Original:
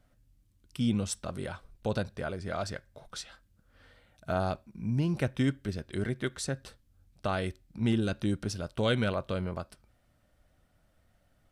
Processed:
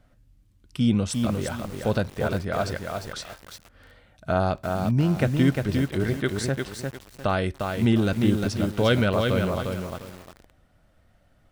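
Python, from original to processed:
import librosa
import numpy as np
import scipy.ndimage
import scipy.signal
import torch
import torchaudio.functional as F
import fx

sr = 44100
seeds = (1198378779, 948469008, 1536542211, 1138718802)

y = fx.high_shelf(x, sr, hz=5500.0, db=-7.0)
y = fx.echo_crushed(y, sr, ms=352, feedback_pct=35, bits=8, wet_db=-4.0)
y = y * librosa.db_to_amplitude(7.0)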